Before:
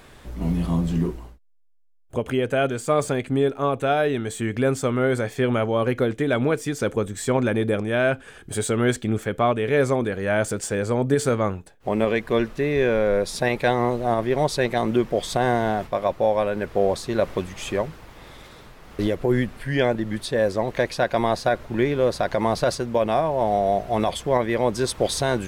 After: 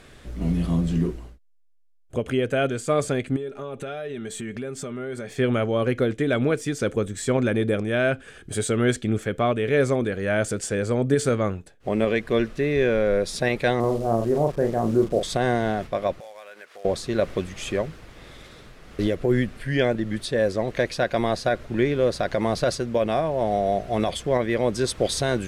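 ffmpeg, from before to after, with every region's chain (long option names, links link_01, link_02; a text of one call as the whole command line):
ffmpeg -i in.wav -filter_complex "[0:a]asettb=1/sr,asplit=3[link_01][link_02][link_03];[link_01]atrim=end=3.364[link_04];[link_02]atrim=start=3.36:end=5.3,asetpts=PTS-STARTPTS,afade=type=in:duration=0.004:curve=qsin,afade=type=out:start_time=1.936:duration=0.004:curve=qsin,aecho=1:1:5:0.46,atrim=end_sample=85554,acompressor=threshold=-29dB:ratio=5:attack=3.2:release=140:knee=1:detection=peak[link_05];[link_03]atrim=start=5.296[link_06];[link_04][link_05]acrossfade=duration=0.004:curve1=hsin:curve2=qsin[link_07];[link_07][link_06]acrossfade=duration=0.004:curve1=qsin:curve2=hsin,asettb=1/sr,asplit=3[link_08][link_09][link_10];[link_08]atrim=end=13.804[link_11];[link_09]atrim=start=13.8:end=15.23,asetpts=PTS-STARTPTS,afade=type=in:duration=0.004:curve=qsin,afade=type=out:start_time=1.426:duration=0.004:curve=qsin,lowpass=frequency=1200:width=0.5412,lowpass=frequency=1200:width=1.3066,acrusher=bits=8:dc=4:mix=0:aa=0.000001,asplit=2[link_12][link_13];[link_13]adelay=35,volume=-5.5dB[link_14];[link_12][link_14]amix=inputs=2:normalize=0,atrim=end_sample=63063[link_15];[link_10]atrim=start=15.226[link_16];[link_11][link_15]acrossfade=duration=0.004:curve1=hsin:curve2=qsin[link_17];[link_17][link_16]acrossfade=duration=0.004:curve1=qsin:curve2=hsin,asettb=1/sr,asplit=3[link_18][link_19][link_20];[link_18]atrim=end=16.204[link_21];[link_19]atrim=start=16.2:end=16.85,asetpts=PTS-STARTPTS,afade=type=in:duration=0.004:curve=qsin,afade=type=out:start_time=0.646:duration=0.004:curve=qsin,highpass=950,acompressor=threshold=-42dB:ratio=2.5:attack=3.2:release=140:knee=1:detection=peak,acrusher=bits=4:mode=log:mix=0:aa=0.000001[link_22];[link_20]atrim=start=16.846[link_23];[link_21][link_22]acrossfade=duration=0.004:curve1=hsin:curve2=qsin[link_24];[link_24][link_23]acrossfade=duration=0.004:curve1=qsin:curve2=hsin,lowpass=11000,equalizer=frequency=920:width_type=o:width=0.58:gain=-7.5" out.wav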